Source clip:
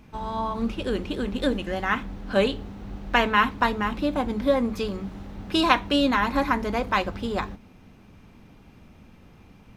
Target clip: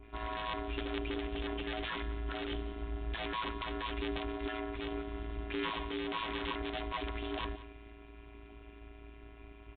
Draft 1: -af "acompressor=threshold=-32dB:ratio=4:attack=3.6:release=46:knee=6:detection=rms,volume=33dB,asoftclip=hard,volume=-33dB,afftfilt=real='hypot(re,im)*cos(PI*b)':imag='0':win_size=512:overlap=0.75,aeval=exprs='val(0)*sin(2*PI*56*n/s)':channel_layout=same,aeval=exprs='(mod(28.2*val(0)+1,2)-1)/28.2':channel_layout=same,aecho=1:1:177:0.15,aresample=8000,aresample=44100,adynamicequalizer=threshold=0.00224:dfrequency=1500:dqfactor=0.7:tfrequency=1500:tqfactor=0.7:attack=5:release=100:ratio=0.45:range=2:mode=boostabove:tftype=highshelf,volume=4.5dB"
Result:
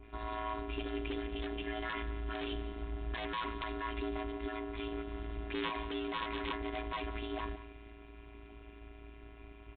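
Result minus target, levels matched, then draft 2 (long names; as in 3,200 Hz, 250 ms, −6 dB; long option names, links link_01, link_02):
downward compressor: peak gain reduction +6 dB
-af "acompressor=threshold=-24dB:ratio=4:attack=3.6:release=46:knee=6:detection=rms,volume=33dB,asoftclip=hard,volume=-33dB,afftfilt=real='hypot(re,im)*cos(PI*b)':imag='0':win_size=512:overlap=0.75,aeval=exprs='val(0)*sin(2*PI*56*n/s)':channel_layout=same,aeval=exprs='(mod(28.2*val(0)+1,2)-1)/28.2':channel_layout=same,aecho=1:1:177:0.15,aresample=8000,aresample=44100,adynamicequalizer=threshold=0.00224:dfrequency=1500:dqfactor=0.7:tfrequency=1500:tqfactor=0.7:attack=5:release=100:ratio=0.45:range=2:mode=boostabove:tftype=highshelf,volume=4.5dB"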